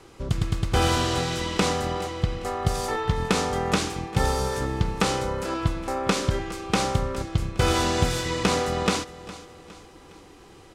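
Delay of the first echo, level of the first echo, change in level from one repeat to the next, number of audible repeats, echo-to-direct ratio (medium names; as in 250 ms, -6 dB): 411 ms, -17.0 dB, -7.0 dB, 3, -16.0 dB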